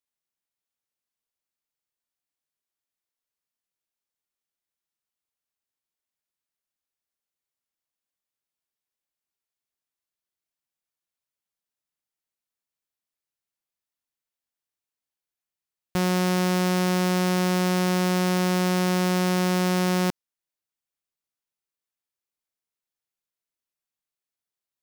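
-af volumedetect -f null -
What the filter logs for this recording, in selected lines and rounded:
mean_volume: -30.3 dB
max_volume: -16.4 dB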